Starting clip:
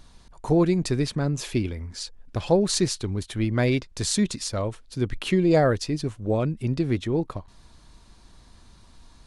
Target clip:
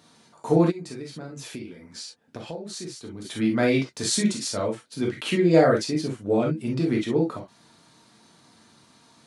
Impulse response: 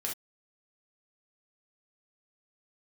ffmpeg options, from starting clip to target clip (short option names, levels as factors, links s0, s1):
-filter_complex "[0:a]highpass=f=140:w=0.5412,highpass=f=140:w=1.3066[s0];[1:a]atrim=start_sample=2205,atrim=end_sample=3087[s1];[s0][s1]afir=irnorm=-1:irlink=0,asplit=3[s2][s3][s4];[s2]afade=t=out:st=0.7:d=0.02[s5];[s3]acompressor=threshold=0.0158:ratio=4,afade=t=in:st=0.7:d=0.02,afade=t=out:st=3.24:d=0.02[s6];[s4]afade=t=in:st=3.24:d=0.02[s7];[s5][s6][s7]amix=inputs=3:normalize=0"